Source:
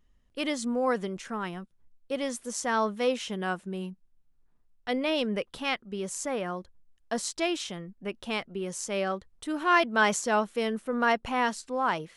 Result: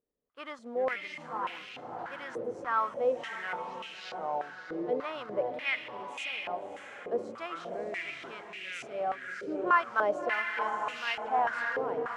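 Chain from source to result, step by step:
delay with pitch and tempo change per echo 196 ms, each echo −7 semitones, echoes 3, each echo −6 dB
convolution reverb, pre-delay 7 ms, DRR 17.5 dB
in parallel at −5 dB: log-companded quantiser 4 bits
on the sum: time-frequency box erased 0:08.10–0:08.98, 600–1,200 Hz
on a send: feedback delay with all-pass diffusion 619 ms, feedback 47%, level −4.5 dB
on the sum: band-pass on a step sequencer 3.4 Hz 460–2,600 Hz

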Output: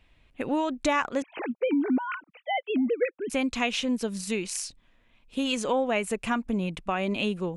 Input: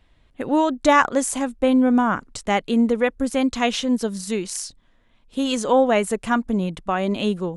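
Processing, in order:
0:01.22–0:03.30: three sine waves on the formant tracks
parametric band 2,500 Hz +9.5 dB 0.41 octaves
downward compressor 2.5 to 1, threshold −21 dBFS, peak gain reduction 8 dB
level −3.5 dB

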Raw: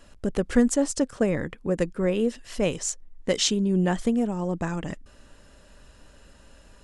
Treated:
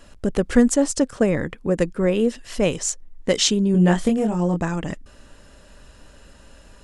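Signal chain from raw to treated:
0:03.72–0:04.60: double-tracking delay 23 ms −3.5 dB
level +4.5 dB

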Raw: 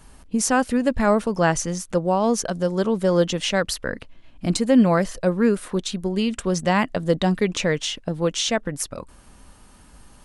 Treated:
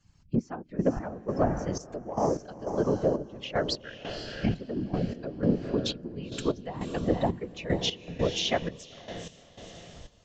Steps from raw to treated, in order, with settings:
spectral dynamics exaggerated over time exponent 1.5
camcorder AGC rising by 11 dB per second
treble cut that deepens with the level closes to 360 Hz, closed at −16 dBFS
high-shelf EQ 3,100 Hz +10 dB
mains-hum notches 60/120/180/240 Hz
random phases in short frames
in parallel at −8.5 dB: soft clipping −17 dBFS, distortion −14 dB
on the sum: feedback delay with all-pass diffusion 505 ms, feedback 44%, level −9 dB
gate pattern "xxxx....xx...x" 152 BPM −12 dB
level −4 dB
Ogg Vorbis 64 kbit/s 16,000 Hz

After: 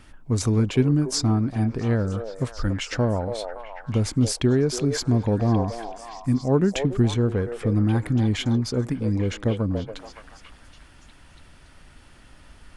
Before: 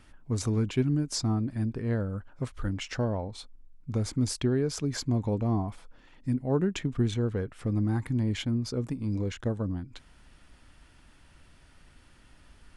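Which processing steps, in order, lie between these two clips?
on a send: echo through a band-pass that steps 283 ms, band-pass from 600 Hz, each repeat 0.7 octaves, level −3.5 dB
on the sum: level +6.5 dB

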